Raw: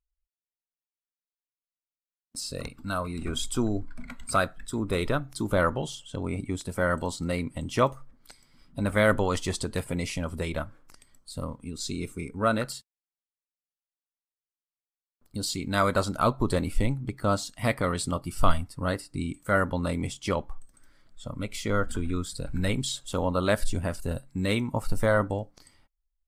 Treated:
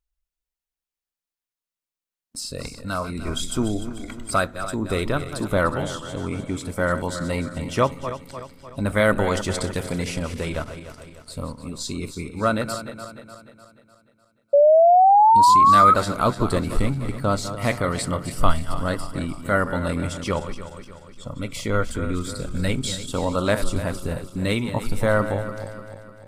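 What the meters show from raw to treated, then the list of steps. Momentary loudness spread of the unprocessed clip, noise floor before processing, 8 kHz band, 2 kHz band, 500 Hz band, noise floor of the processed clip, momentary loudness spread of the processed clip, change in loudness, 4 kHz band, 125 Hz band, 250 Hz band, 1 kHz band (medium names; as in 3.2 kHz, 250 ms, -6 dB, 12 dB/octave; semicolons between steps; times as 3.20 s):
11 LU, under -85 dBFS, +3.5 dB, +3.5 dB, +6.5 dB, under -85 dBFS, 20 LU, +7.0 dB, +3.5 dB, +3.5 dB, +3.5 dB, +13.0 dB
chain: backward echo that repeats 150 ms, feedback 69%, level -10.5 dB; painted sound rise, 14.53–15.94 s, 560–1300 Hz -16 dBFS; trim +3 dB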